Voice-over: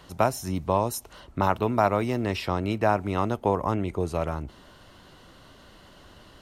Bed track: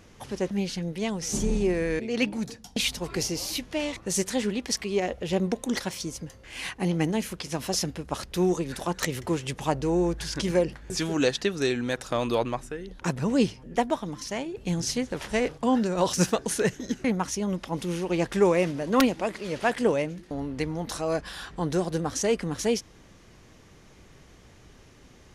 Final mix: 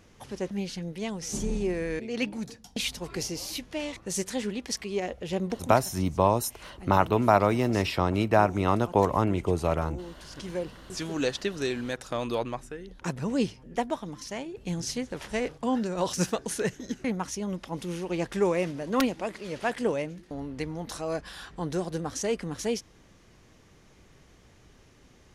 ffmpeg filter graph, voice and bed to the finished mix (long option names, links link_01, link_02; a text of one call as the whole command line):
ffmpeg -i stem1.wav -i stem2.wav -filter_complex "[0:a]adelay=5500,volume=1.5dB[link_01];[1:a]volume=8.5dB,afade=type=out:start_time=5.56:duration=0.29:silence=0.237137,afade=type=in:start_time=10.13:duration=1.16:silence=0.237137[link_02];[link_01][link_02]amix=inputs=2:normalize=0" out.wav